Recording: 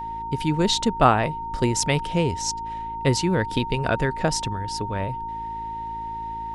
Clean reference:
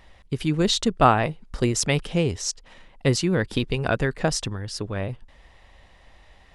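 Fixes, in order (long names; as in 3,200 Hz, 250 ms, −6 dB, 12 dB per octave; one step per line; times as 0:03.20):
hum removal 54.8 Hz, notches 7
notch filter 920 Hz, Q 30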